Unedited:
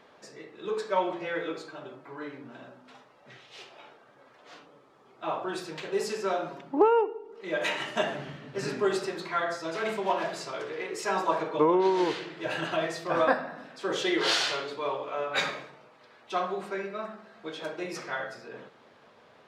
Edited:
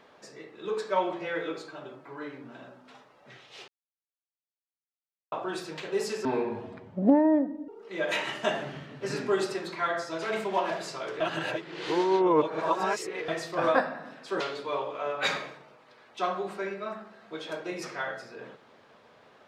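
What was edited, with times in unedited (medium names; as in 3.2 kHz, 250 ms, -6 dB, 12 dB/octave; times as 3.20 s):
3.68–5.32 s: mute
6.25–7.21 s: speed 67%
10.73–12.81 s: reverse
13.93–14.53 s: delete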